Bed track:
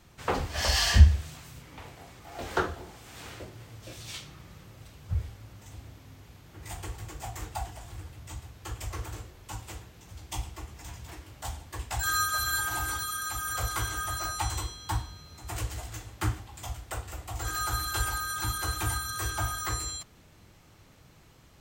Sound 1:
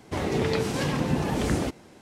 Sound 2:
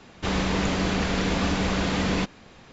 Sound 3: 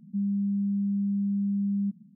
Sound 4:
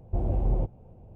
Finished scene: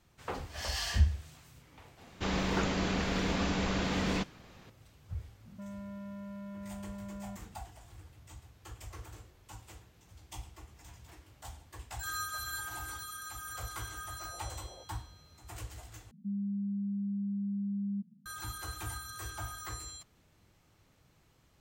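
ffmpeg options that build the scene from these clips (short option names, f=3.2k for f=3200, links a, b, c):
-filter_complex "[3:a]asplit=2[a][b];[0:a]volume=-10dB[c];[a]asoftclip=type=tanh:threshold=-39.5dB[d];[4:a]highpass=f=490:w=0.5412,highpass=f=490:w=1.3066[e];[c]asplit=2[f][g];[f]atrim=end=16.114[h];[b]atrim=end=2.15,asetpts=PTS-STARTPTS,volume=-7.5dB[i];[g]atrim=start=18.256[j];[2:a]atrim=end=2.72,asetpts=PTS-STARTPTS,volume=-7dB,afade=t=in:d=0.004:c=hsin,afade=t=out:st=2.716:d=0.004:c=hsin,adelay=1980[k];[d]atrim=end=2.15,asetpts=PTS-STARTPTS,volume=-3.5dB,afade=t=in:d=0.004:c=hsin,afade=t=out:st=2.146:d=0.004:c=hsin,adelay=240345S[l];[e]atrim=end=1.15,asetpts=PTS-STARTPTS,volume=-12.5dB,afade=t=in:d=0.004:c=hsin,afade=t=out:st=1.146:d=0.004:c=hsin,adelay=14180[m];[h][i]acrossfade=d=0.004:c1=hsin:c2=hsin[n];[n][j]acrossfade=d=0.004:c1=hsin:c2=hsin[o];[o][k][l][m]amix=inputs=4:normalize=0"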